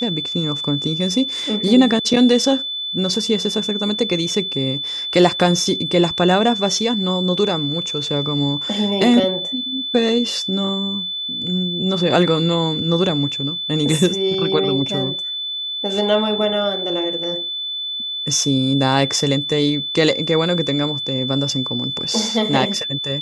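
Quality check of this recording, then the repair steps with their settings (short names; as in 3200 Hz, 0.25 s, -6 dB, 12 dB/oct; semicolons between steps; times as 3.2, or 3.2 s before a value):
tone 3500 Hz -23 dBFS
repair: notch 3500 Hz, Q 30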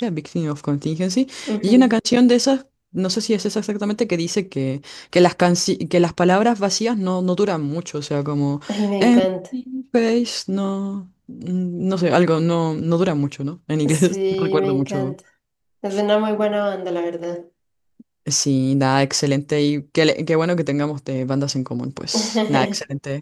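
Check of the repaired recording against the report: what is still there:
none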